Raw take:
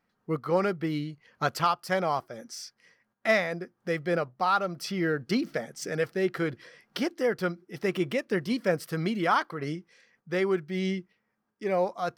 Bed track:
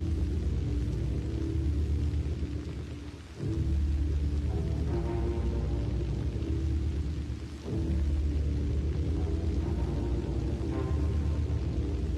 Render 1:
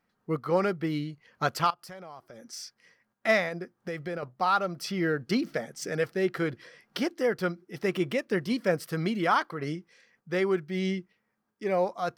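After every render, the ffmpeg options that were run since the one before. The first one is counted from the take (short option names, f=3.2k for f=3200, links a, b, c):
-filter_complex "[0:a]asettb=1/sr,asplit=3[a][b][c];[a]atrim=end=1.704[d];[b]atrim=start=1.7:end=2.53,asetpts=PTS-STARTPTS,afade=t=in:d=0.004:c=qsin,afade=t=out:st=0.826:d=0.004:c=qsin,acompressor=threshold=-44dB:ratio=4:attack=3.2:release=140:knee=1:detection=peak[e];[c]atrim=start=2.526[f];[d][e]acrossfade=d=0.004:c1=hsin:c2=qsin[g];[g][f]acrossfade=d=0.004:c1=qsin:c2=hsin,asettb=1/sr,asplit=3[h][i][j];[h]atrim=end=3.484[k];[i]atrim=start=3.48:end=4.23,asetpts=PTS-STARTPTS,afade=t=in:d=0.004:c=qsin,afade=t=out:st=0.746:d=0.004:c=qsin,acompressor=threshold=-30dB:ratio=6:attack=3.2:release=140:knee=1:detection=peak[l];[j]atrim=start=4.226[m];[k][l]acrossfade=d=0.004:c1=hsin:c2=qsin[n];[n][m]acrossfade=d=0.004:c1=qsin:c2=hsin"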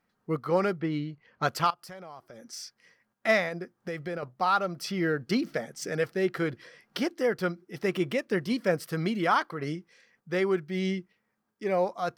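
-filter_complex "[0:a]asettb=1/sr,asplit=3[a][b][c];[a]atrim=end=0.804[d];[b]atrim=start=0.8:end=1.43,asetpts=PTS-STARTPTS,afade=t=in:d=0.004:c=qsin,afade=t=out:st=0.626:d=0.004:c=qsin,adynamicsmooth=sensitivity=2:basefreq=4.2k[e];[c]atrim=start=1.426[f];[d][e]acrossfade=d=0.004:c1=hsin:c2=qsin[g];[g][f]acrossfade=d=0.004:c1=qsin:c2=hsin"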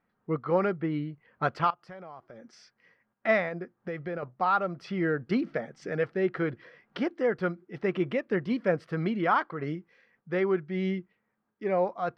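-af "lowpass=2.3k"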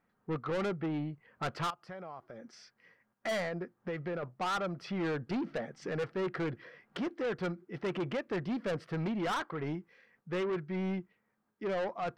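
-af "asoftclip=type=tanh:threshold=-30dB"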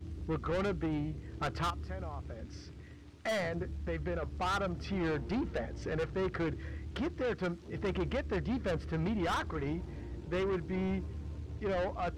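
-filter_complex "[1:a]volume=-12.5dB[a];[0:a][a]amix=inputs=2:normalize=0"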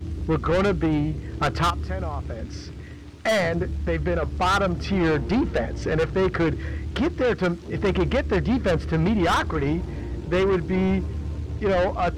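-af "volume=12dB"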